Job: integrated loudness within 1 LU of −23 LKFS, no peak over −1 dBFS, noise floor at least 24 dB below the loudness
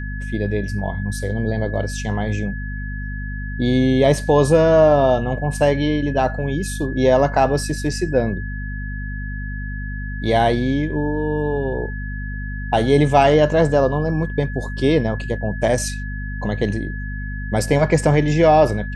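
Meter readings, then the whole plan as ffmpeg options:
mains hum 50 Hz; hum harmonics up to 250 Hz; level of the hum −25 dBFS; interfering tone 1,700 Hz; level of the tone −33 dBFS; integrated loudness −19.5 LKFS; sample peak −2.0 dBFS; target loudness −23.0 LKFS
→ -af "bandreject=frequency=50:width_type=h:width=6,bandreject=frequency=100:width_type=h:width=6,bandreject=frequency=150:width_type=h:width=6,bandreject=frequency=200:width_type=h:width=6,bandreject=frequency=250:width_type=h:width=6"
-af "bandreject=frequency=1700:width=30"
-af "volume=-3.5dB"

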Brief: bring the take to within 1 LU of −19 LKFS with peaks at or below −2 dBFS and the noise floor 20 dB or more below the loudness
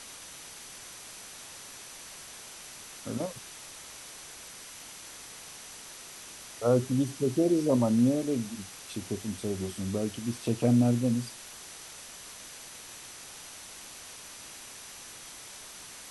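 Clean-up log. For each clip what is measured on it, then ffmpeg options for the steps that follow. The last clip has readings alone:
interfering tone 6,000 Hz; level of the tone −54 dBFS; background noise floor −47 dBFS; target noise floor −49 dBFS; integrated loudness −29.0 LKFS; sample peak −12.5 dBFS; target loudness −19.0 LKFS
→ -af "bandreject=frequency=6000:width=30"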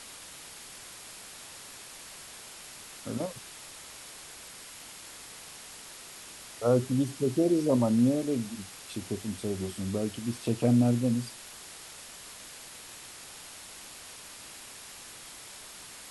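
interfering tone none found; background noise floor −47 dBFS; target noise floor −49 dBFS
→ -af "afftdn=noise_reduction=6:noise_floor=-47"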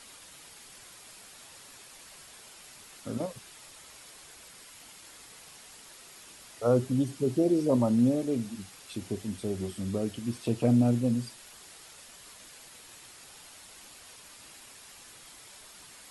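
background noise floor −51 dBFS; integrated loudness −29.0 LKFS; sample peak −12.5 dBFS; target loudness −19.0 LKFS
→ -af "volume=10dB"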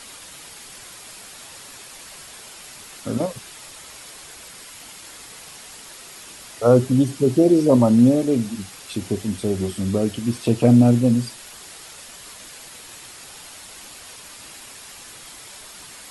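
integrated loudness −19.0 LKFS; sample peak −2.5 dBFS; background noise floor −41 dBFS

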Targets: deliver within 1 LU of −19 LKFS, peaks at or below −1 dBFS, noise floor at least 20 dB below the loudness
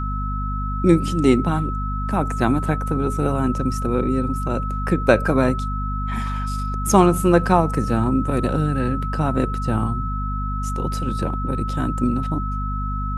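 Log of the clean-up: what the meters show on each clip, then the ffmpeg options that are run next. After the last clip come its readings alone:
mains hum 50 Hz; hum harmonics up to 250 Hz; level of the hum −23 dBFS; interfering tone 1,300 Hz; level of the tone −28 dBFS; integrated loudness −21.5 LKFS; sample peak −1.5 dBFS; target loudness −19.0 LKFS
→ -af "bandreject=frequency=50:width_type=h:width=4,bandreject=frequency=100:width_type=h:width=4,bandreject=frequency=150:width_type=h:width=4,bandreject=frequency=200:width_type=h:width=4,bandreject=frequency=250:width_type=h:width=4"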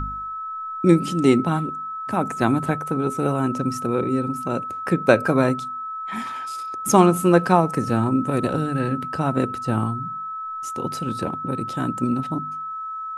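mains hum none found; interfering tone 1,300 Hz; level of the tone −28 dBFS
→ -af "bandreject=frequency=1300:width=30"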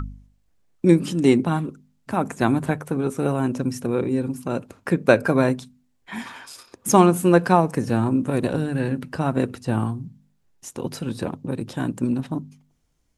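interfering tone none found; integrated loudness −22.5 LKFS; sample peak −2.0 dBFS; target loudness −19.0 LKFS
→ -af "volume=3.5dB,alimiter=limit=-1dB:level=0:latency=1"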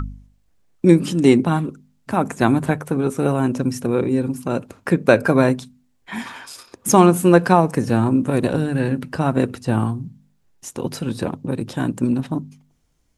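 integrated loudness −19.0 LKFS; sample peak −1.0 dBFS; background noise floor −62 dBFS

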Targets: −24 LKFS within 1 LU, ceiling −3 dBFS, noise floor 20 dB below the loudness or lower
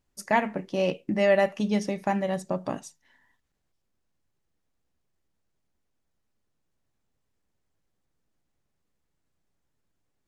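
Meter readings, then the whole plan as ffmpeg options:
integrated loudness −26.5 LKFS; sample peak −10.0 dBFS; target loudness −24.0 LKFS
→ -af "volume=2.5dB"

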